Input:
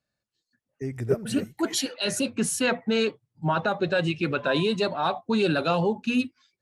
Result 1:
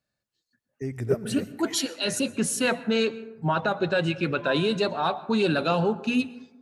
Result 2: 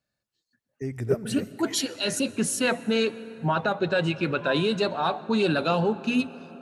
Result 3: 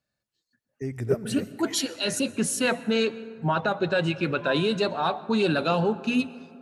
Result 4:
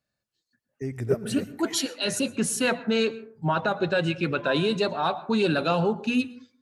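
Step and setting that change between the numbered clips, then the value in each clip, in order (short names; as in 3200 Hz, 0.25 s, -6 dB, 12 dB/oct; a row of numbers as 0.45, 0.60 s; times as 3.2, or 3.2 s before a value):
plate-style reverb, RT60: 1.1, 5, 2.4, 0.52 s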